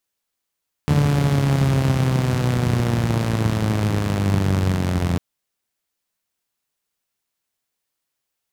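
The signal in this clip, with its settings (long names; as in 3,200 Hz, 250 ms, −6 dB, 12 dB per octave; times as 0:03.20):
pulse-train model of a four-cylinder engine, changing speed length 4.30 s, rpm 4,400, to 2,600, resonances 98/140 Hz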